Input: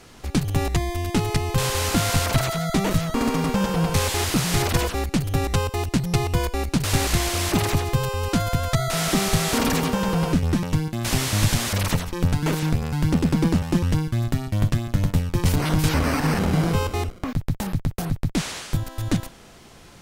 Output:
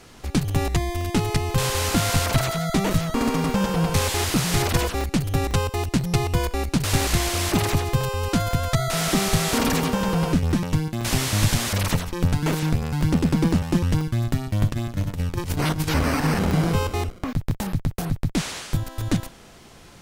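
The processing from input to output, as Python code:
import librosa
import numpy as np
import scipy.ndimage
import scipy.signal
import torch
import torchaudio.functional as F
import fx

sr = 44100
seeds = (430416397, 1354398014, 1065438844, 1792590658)

y = fx.over_compress(x, sr, threshold_db=-22.0, ratio=-0.5, at=(14.68, 15.93), fade=0.02)
y = fx.buffer_crackle(y, sr, first_s=0.51, period_s=0.5, block=64, kind='zero')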